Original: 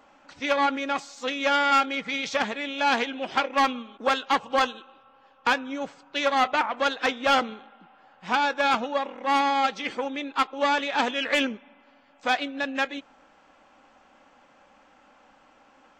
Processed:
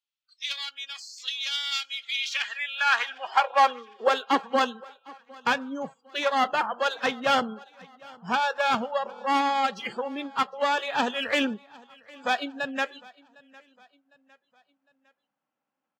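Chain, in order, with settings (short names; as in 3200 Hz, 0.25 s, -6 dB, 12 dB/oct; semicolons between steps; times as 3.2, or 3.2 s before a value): half-wave gain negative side -3 dB; spectral noise reduction 28 dB; high-pass sweep 3700 Hz -> 140 Hz, 1.99–5.05; on a send: feedback echo 0.756 s, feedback 45%, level -24 dB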